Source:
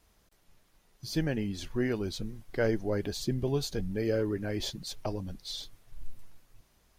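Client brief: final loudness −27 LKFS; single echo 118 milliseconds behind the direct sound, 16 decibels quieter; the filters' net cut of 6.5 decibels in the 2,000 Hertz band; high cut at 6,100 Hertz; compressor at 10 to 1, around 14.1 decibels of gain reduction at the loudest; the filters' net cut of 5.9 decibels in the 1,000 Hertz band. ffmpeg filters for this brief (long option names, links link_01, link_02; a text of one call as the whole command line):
ffmpeg -i in.wav -af "lowpass=6100,equalizer=frequency=1000:width_type=o:gain=-7.5,equalizer=frequency=2000:width_type=o:gain=-5.5,acompressor=threshold=-40dB:ratio=10,aecho=1:1:118:0.158,volume=18dB" out.wav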